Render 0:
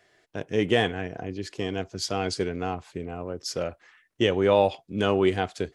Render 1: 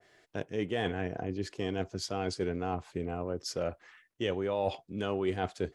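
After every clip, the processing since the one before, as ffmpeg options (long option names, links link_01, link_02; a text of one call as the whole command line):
ffmpeg -i in.wav -af "areverse,acompressor=threshold=-28dB:ratio=6,areverse,adynamicequalizer=threshold=0.00398:dfrequency=1600:dqfactor=0.7:tfrequency=1600:tqfactor=0.7:attack=5:release=100:ratio=0.375:range=2.5:mode=cutabove:tftype=highshelf" out.wav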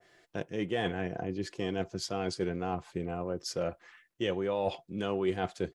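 ffmpeg -i in.wav -af "aecho=1:1:5.8:0.32" out.wav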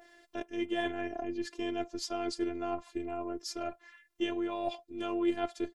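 ffmpeg -i in.wav -af "afftfilt=real='hypot(re,im)*cos(PI*b)':imag='0':win_size=512:overlap=0.75,acompressor=mode=upward:threshold=-53dB:ratio=2.5,volume=2dB" out.wav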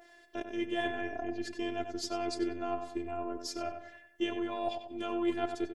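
ffmpeg -i in.wav -filter_complex "[0:a]asplit=2[link_01][link_02];[link_02]adelay=94,lowpass=frequency=2600:poles=1,volume=-7dB,asplit=2[link_03][link_04];[link_04]adelay=94,lowpass=frequency=2600:poles=1,volume=0.44,asplit=2[link_05][link_06];[link_06]adelay=94,lowpass=frequency=2600:poles=1,volume=0.44,asplit=2[link_07][link_08];[link_08]adelay=94,lowpass=frequency=2600:poles=1,volume=0.44,asplit=2[link_09][link_10];[link_10]adelay=94,lowpass=frequency=2600:poles=1,volume=0.44[link_11];[link_01][link_03][link_05][link_07][link_09][link_11]amix=inputs=6:normalize=0" out.wav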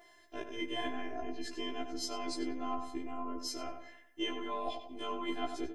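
ffmpeg -i in.wav -af "afftfilt=real='re*1.73*eq(mod(b,3),0)':imag='im*1.73*eq(mod(b,3),0)':win_size=2048:overlap=0.75,volume=3dB" out.wav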